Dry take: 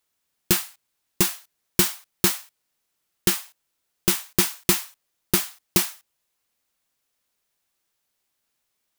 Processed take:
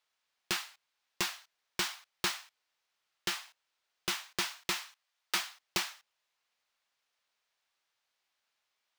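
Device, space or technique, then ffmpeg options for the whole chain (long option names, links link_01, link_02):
DJ mixer with the lows and highs turned down: -filter_complex "[0:a]asplit=3[link_01][link_02][link_03];[link_01]afade=type=out:start_time=4.84:duration=0.02[link_04];[link_02]highpass=650,afade=type=in:start_time=4.84:duration=0.02,afade=type=out:start_time=5.34:duration=0.02[link_05];[link_03]afade=type=in:start_time=5.34:duration=0.02[link_06];[link_04][link_05][link_06]amix=inputs=3:normalize=0,acrossover=split=570 5700:gain=0.178 1 0.141[link_07][link_08][link_09];[link_07][link_08][link_09]amix=inputs=3:normalize=0,alimiter=limit=-17.5dB:level=0:latency=1:release=242"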